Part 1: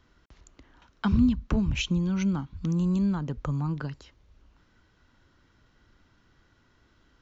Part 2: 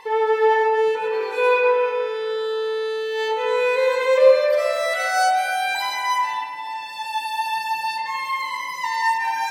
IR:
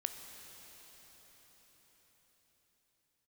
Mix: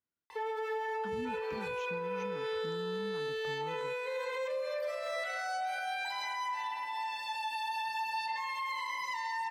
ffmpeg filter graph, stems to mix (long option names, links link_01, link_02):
-filter_complex "[0:a]agate=range=-17dB:threshold=-52dB:ratio=16:detection=peak,volume=-15.5dB[link_01];[1:a]acrossover=split=290|6500[link_02][link_03][link_04];[link_02]acompressor=threshold=-43dB:ratio=4[link_05];[link_03]acompressor=threshold=-24dB:ratio=4[link_06];[link_04]acompressor=threshold=-56dB:ratio=4[link_07];[link_05][link_06][link_07]amix=inputs=3:normalize=0,equalizer=frequency=220:width=0.75:gain=-6.5,adelay=300,volume=-5.5dB[link_08];[link_01][link_08]amix=inputs=2:normalize=0,highpass=130,alimiter=level_in=5dB:limit=-24dB:level=0:latency=1:release=53,volume=-5dB"